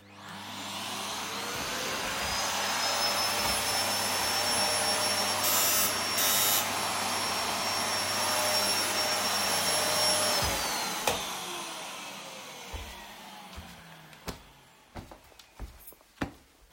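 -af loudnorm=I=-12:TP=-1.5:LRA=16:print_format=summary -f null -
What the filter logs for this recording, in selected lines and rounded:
Input Integrated:    -27.2 LUFS
Input True Peak:     -10.1 dBTP
Input LRA:            19.5 LU
Input Threshold:     -39.4 LUFS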